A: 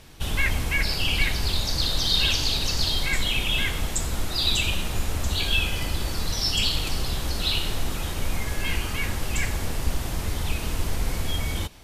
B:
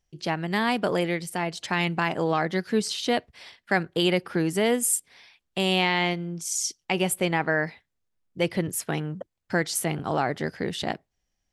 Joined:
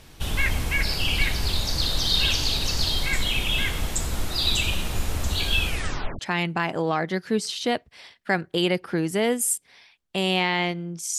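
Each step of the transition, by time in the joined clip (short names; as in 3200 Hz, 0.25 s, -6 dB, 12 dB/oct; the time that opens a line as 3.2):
A
5.67 tape stop 0.52 s
6.19 switch to B from 1.61 s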